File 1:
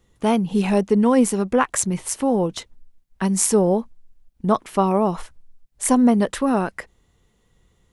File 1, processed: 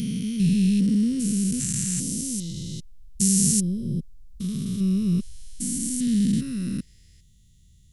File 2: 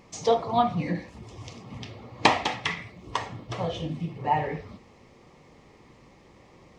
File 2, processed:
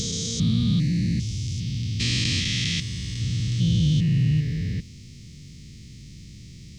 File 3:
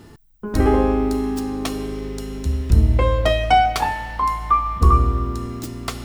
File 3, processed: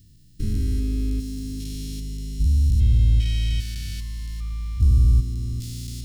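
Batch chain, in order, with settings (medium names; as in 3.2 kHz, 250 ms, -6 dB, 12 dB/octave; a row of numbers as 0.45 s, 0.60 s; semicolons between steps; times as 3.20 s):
spectrogram pixelated in time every 400 ms; Chebyshev band-stop 140–4500 Hz, order 2; normalise loudness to -24 LUFS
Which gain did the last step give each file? +8.5 dB, +18.5 dB, +2.5 dB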